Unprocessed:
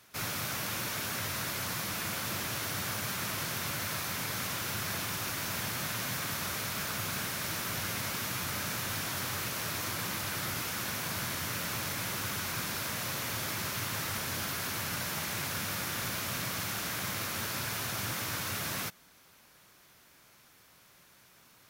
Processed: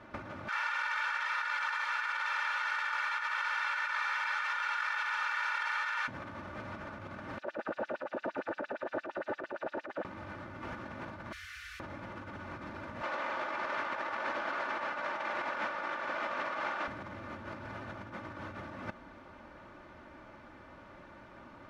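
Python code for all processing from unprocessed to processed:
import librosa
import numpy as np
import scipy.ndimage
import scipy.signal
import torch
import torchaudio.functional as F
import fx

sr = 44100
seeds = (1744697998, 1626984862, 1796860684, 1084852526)

y = fx.chain(x, sr, fx.highpass(hz=1200.0, slope=24),
    fx.high_shelf(hz=9700.0, db=-8.5),
    fx.comb(ms=2.2, depth=0.66), at=(0.48, 6.08))
y = fx.chain(y, sr, fx.median_filter(points=41),
    fx.filter_lfo_highpass(shape='sine', hz=8.7, low_hz=380.0, high_hz=5600.0, q=2.8), at=(7.38, 10.05))
y = fx.chain(y, sr, fx.cheby2_bandstop(low_hz=120.0, high_hz=880.0, order=4, stop_db=40),
    fx.pre_emphasis(coefficient=0.8), at=(11.32, 11.8))
y = fx.chain(y, sr, fx.highpass(hz=630.0, slope=12),
    fx.air_absorb(metres=59.0), at=(13.02, 16.88))
y = scipy.signal.sosfilt(scipy.signal.butter(2, 1200.0, 'lowpass', fs=sr, output='sos'), y)
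y = y + 0.58 * np.pad(y, (int(3.4 * sr / 1000.0), 0))[:len(y)]
y = fx.over_compress(y, sr, threshold_db=-46.0, ratio=-0.5)
y = F.gain(torch.from_numpy(y), 9.5).numpy()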